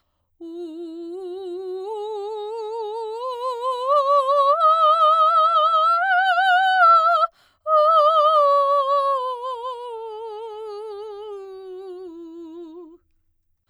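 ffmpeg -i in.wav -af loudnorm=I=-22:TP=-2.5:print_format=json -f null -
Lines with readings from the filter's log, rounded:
"input_i" : "-18.2",
"input_tp" : "-6.4",
"input_lra" : "21.1",
"input_thresh" : "-30.9",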